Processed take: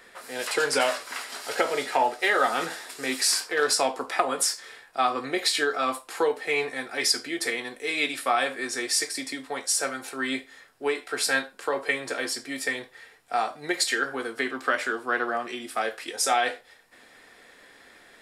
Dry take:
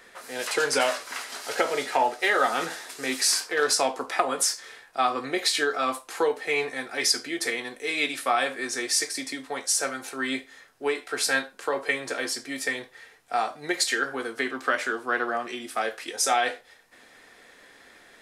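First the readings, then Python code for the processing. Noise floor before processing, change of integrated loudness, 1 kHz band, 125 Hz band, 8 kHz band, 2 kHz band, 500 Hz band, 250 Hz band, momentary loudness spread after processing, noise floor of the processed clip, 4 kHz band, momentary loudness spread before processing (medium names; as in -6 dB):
-54 dBFS, 0.0 dB, 0.0 dB, 0.0 dB, -1.0 dB, 0.0 dB, 0.0 dB, 0.0 dB, 9 LU, -54 dBFS, 0.0 dB, 9 LU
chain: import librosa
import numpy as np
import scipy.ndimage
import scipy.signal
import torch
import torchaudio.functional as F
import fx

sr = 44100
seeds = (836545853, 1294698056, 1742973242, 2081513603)

y = fx.notch(x, sr, hz=6200.0, q=12.0)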